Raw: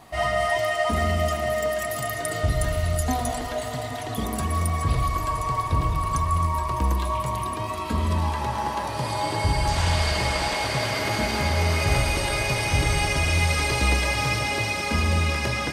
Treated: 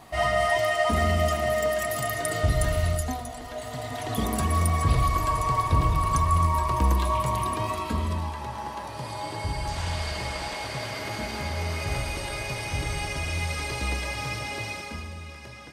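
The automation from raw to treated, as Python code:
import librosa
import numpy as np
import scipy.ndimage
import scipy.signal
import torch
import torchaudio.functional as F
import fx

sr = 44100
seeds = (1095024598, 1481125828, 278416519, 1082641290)

y = fx.gain(x, sr, db=fx.line((2.87, 0.0), (3.29, -10.5), (4.15, 1.0), (7.69, 1.0), (8.33, -7.5), (14.74, -7.5), (15.15, -17.5)))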